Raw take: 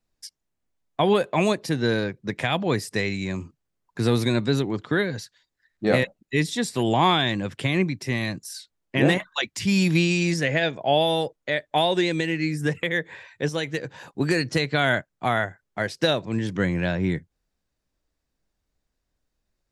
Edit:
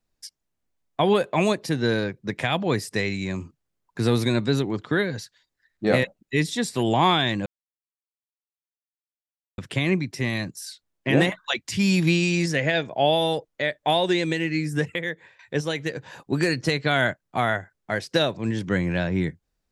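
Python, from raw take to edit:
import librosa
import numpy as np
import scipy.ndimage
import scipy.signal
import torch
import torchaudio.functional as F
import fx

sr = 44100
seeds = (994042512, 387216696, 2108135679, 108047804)

y = fx.edit(x, sr, fx.insert_silence(at_s=7.46, length_s=2.12),
    fx.fade_out_to(start_s=12.69, length_s=0.58, floor_db=-16.5), tone=tone)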